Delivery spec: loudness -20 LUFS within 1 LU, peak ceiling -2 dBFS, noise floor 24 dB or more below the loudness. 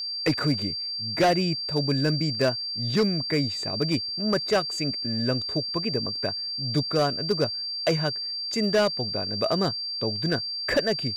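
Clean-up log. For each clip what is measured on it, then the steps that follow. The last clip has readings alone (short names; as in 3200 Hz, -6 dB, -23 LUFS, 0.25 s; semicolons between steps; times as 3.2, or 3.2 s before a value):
clipped 0.8%; flat tops at -16.0 dBFS; steady tone 4700 Hz; tone level -29 dBFS; loudness -25.5 LUFS; peak -16.0 dBFS; loudness target -20.0 LUFS
-> clip repair -16 dBFS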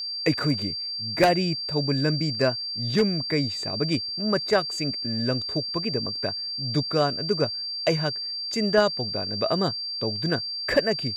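clipped 0.0%; steady tone 4700 Hz; tone level -29 dBFS
-> notch 4700 Hz, Q 30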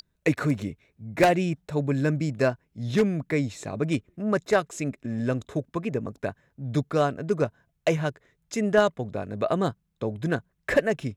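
steady tone none; loudness -27.0 LUFS; peak -6.5 dBFS; loudness target -20.0 LUFS
-> gain +7 dB; limiter -2 dBFS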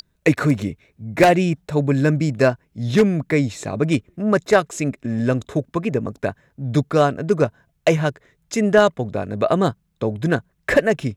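loudness -20.0 LUFS; peak -2.0 dBFS; noise floor -67 dBFS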